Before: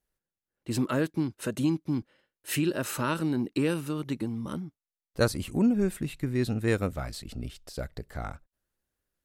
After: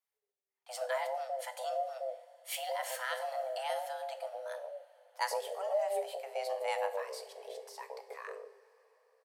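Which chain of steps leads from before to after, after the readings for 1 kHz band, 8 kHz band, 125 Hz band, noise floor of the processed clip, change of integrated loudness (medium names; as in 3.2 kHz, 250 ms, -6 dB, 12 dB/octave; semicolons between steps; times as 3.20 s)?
+2.5 dB, -6.5 dB, under -40 dB, under -85 dBFS, -8.0 dB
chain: frequency shift +390 Hz; bands offset in time highs, lows 120 ms, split 760 Hz; two-slope reverb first 0.46 s, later 4.5 s, from -18 dB, DRR 8 dB; trim -7 dB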